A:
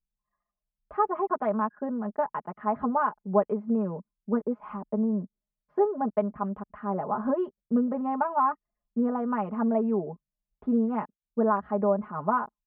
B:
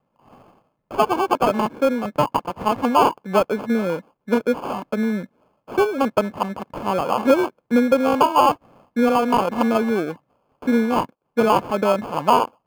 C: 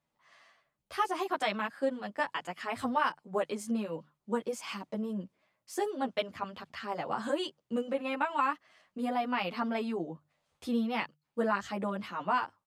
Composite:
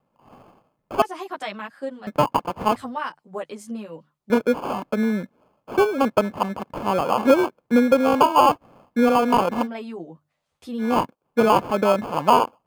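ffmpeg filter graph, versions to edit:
ffmpeg -i take0.wav -i take1.wav -i take2.wav -filter_complex "[2:a]asplit=3[link_01][link_02][link_03];[1:a]asplit=4[link_04][link_05][link_06][link_07];[link_04]atrim=end=1.022[link_08];[link_01]atrim=start=1.018:end=2.072[link_09];[link_05]atrim=start=2.068:end=2.762[link_10];[link_02]atrim=start=2.758:end=4.302[link_11];[link_06]atrim=start=4.298:end=9.68[link_12];[link_03]atrim=start=9.58:end=10.88[link_13];[link_07]atrim=start=10.78[link_14];[link_08][link_09]acrossfade=duration=0.004:curve1=hsin:curve2=hsin[link_15];[link_15][link_10]acrossfade=duration=0.004:curve1=hsin:curve2=hsin[link_16];[link_16][link_11]acrossfade=duration=0.004:curve1=hsin:curve2=hsin[link_17];[link_17][link_12]acrossfade=duration=0.004:curve1=hsin:curve2=hsin[link_18];[link_18][link_13]acrossfade=duration=0.1:curve1=tri:curve2=tri[link_19];[link_19][link_14]acrossfade=duration=0.1:curve1=tri:curve2=tri" out.wav

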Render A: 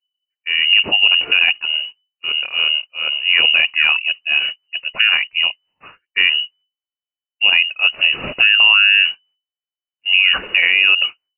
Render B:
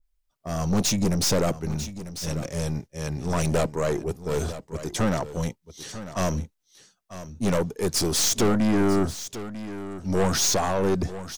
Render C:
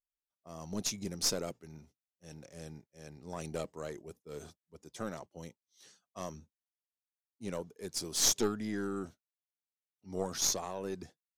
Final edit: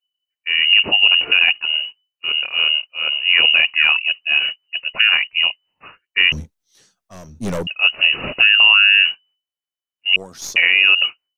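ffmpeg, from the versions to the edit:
ffmpeg -i take0.wav -i take1.wav -i take2.wav -filter_complex "[0:a]asplit=3[link_01][link_02][link_03];[link_01]atrim=end=6.322[link_04];[1:a]atrim=start=6.318:end=7.672[link_05];[link_02]atrim=start=7.668:end=10.162[link_06];[2:a]atrim=start=10.158:end=10.562[link_07];[link_03]atrim=start=10.558[link_08];[link_04][link_05]acrossfade=duration=0.004:curve1=hsin:curve2=hsin[link_09];[link_09][link_06]acrossfade=duration=0.004:curve1=hsin:curve2=hsin[link_10];[link_10][link_07]acrossfade=duration=0.004:curve1=hsin:curve2=hsin[link_11];[link_11][link_08]acrossfade=duration=0.004:curve1=hsin:curve2=hsin" out.wav

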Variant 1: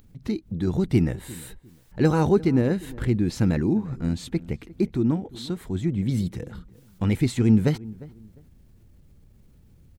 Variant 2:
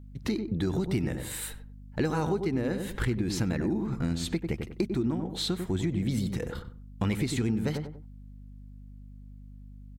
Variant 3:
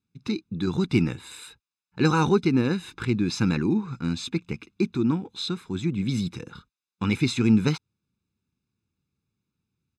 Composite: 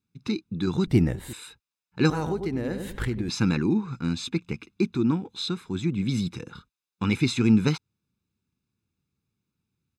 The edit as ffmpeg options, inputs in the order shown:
ffmpeg -i take0.wav -i take1.wav -i take2.wav -filter_complex "[2:a]asplit=3[link_01][link_02][link_03];[link_01]atrim=end=0.872[link_04];[0:a]atrim=start=0.868:end=1.332[link_05];[link_02]atrim=start=1.328:end=2.102[link_06];[1:a]atrim=start=2.098:end=3.292[link_07];[link_03]atrim=start=3.288[link_08];[link_04][link_05]acrossfade=duration=0.004:curve1=hsin:curve2=hsin[link_09];[link_09][link_06]acrossfade=duration=0.004:curve1=hsin:curve2=hsin[link_10];[link_10][link_07]acrossfade=duration=0.004:curve1=hsin:curve2=hsin[link_11];[link_11][link_08]acrossfade=duration=0.004:curve1=hsin:curve2=hsin" out.wav

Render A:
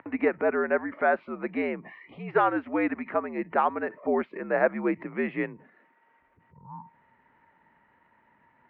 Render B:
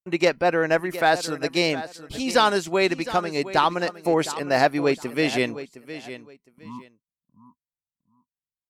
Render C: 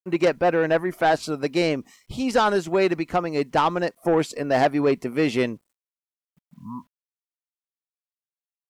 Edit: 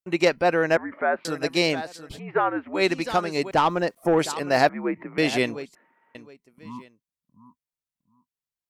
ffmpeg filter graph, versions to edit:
ffmpeg -i take0.wav -i take1.wav -i take2.wav -filter_complex "[0:a]asplit=4[link_01][link_02][link_03][link_04];[1:a]asplit=6[link_05][link_06][link_07][link_08][link_09][link_10];[link_05]atrim=end=0.772[link_11];[link_01]atrim=start=0.768:end=1.252[link_12];[link_06]atrim=start=1.248:end=2.2[link_13];[link_02]atrim=start=2.1:end=2.83[link_14];[link_07]atrim=start=2.73:end=3.512[link_15];[2:a]atrim=start=3.508:end=4.192[link_16];[link_08]atrim=start=4.188:end=4.692[link_17];[link_03]atrim=start=4.688:end=5.182[link_18];[link_09]atrim=start=5.178:end=5.752[link_19];[link_04]atrim=start=5.748:end=6.152[link_20];[link_10]atrim=start=6.148[link_21];[link_11][link_12]acrossfade=duration=0.004:curve1=hsin:curve2=hsin[link_22];[link_22][link_13]acrossfade=duration=0.004:curve1=hsin:curve2=hsin[link_23];[link_23][link_14]acrossfade=duration=0.1:curve1=tri:curve2=tri[link_24];[link_24][link_15]acrossfade=duration=0.1:curve1=tri:curve2=tri[link_25];[link_25][link_16]acrossfade=duration=0.004:curve1=hsin:curve2=hsin[link_26];[link_26][link_17]acrossfade=duration=0.004:curve1=hsin:curve2=hsin[link_27];[link_27][link_18]acrossfade=duration=0.004:curve1=hsin:curve2=hsin[link_28];[link_28][link_19]acrossfade=duration=0.004:curve1=hsin:curve2=hsin[link_29];[link_29][link_20]acrossfade=duration=0.004:curve1=hsin:curve2=hsin[link_30];[link_30][link_21]acrossfade=duration=0.004:curve1=hsin:curve2=hsin" out.wav

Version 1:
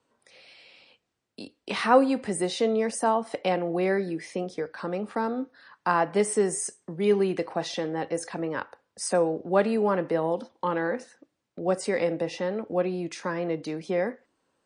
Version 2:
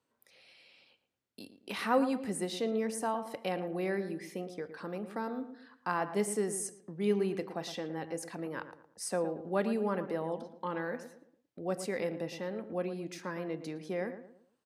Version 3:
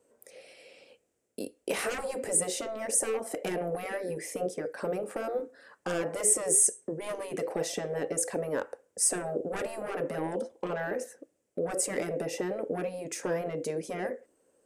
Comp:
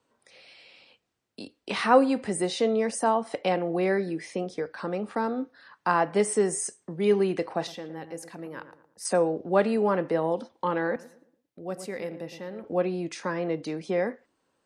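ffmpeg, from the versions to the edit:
ffmpeg -i take0.wav -i take1.wav -filter_complex "[1:a]asplit=2[link_01][link_02];[0:a]asplit=3[link_03][link_04][link_05];[link_03]atrim=end=7.672[link_06];[link_01]atrim=start=7.668:end=9.052[link_07];[link_04]atrim=start=9.048:end=10.962[link_08];[link_02]atrim=start=10.958:end=12.642[link_09];[link_05]atrim=start=12.638[link_10];[link_06][link_07]acrossfade=duration=0.004:curve1=hsin:curve2=hsin[link_11];[link_11][link_08]acrossfade=duration=0.004:curve1=hsin:curve2=hsin[link_12];[link_12][link_09]acrossfade=duration=0.004:curve1=hsin:curve2=hsin[link_13];[link_13][link_10]acrossfade=duration=0.004:curve1=hsin:curve2=hsin" out.wav

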